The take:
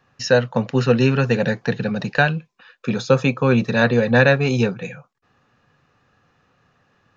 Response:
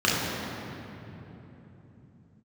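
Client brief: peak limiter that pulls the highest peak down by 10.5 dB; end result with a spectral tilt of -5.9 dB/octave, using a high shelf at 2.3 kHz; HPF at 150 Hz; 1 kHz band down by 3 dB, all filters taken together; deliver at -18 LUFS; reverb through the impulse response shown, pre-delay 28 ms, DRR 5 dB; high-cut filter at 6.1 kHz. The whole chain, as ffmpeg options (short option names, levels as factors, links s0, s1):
-filter_complex "[0:a]highpass=150,lowpass=6100,equalizer=f=1000:t=o:g=-3.5,highshelf=f=2300:g=-4.5,alimiter=limit=0.2:level=0:latency=1,asplit=2[s0][s1];[1:a]atrim=start_sample=2205,adelay=28[s2];[s1][s2]afir=irnorm=-1:irlink=0,volume=0.0708[s3];[s0][s3]amix=inputs=2:normalize=0,volume=1.78"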